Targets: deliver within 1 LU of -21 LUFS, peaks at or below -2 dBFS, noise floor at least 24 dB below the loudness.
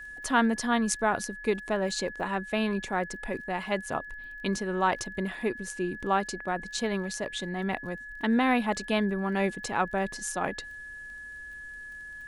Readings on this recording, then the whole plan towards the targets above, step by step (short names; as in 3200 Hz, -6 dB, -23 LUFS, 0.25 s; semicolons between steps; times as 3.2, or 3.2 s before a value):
ticks 25/s; steady tone 1700 Hz; tone level -40 dBFS; loudness -29.5 LUFS; peak -8.0 dBFS; loudness target -21.0 LUFS
-> de-click; notch 1700 Hz, Q 30; gain +8.5 dB; limiter -2 dBFS